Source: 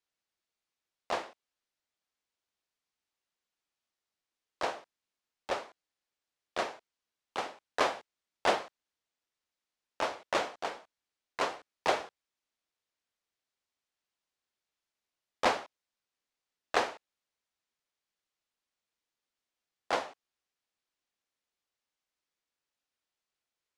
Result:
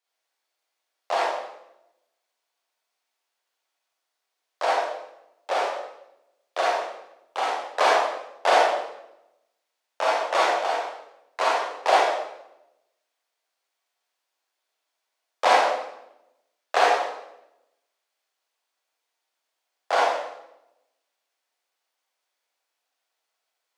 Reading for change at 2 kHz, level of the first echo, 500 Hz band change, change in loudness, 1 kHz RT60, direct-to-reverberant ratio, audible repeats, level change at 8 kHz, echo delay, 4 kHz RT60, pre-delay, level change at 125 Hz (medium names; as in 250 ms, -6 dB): +10.0 dB, no echo, +11.5 dB, +10.5 dB, 0.80 s, -5.5 dB, no echo, +8.5 dB, no echo, 0.70 s, 33 ms, under -10 dB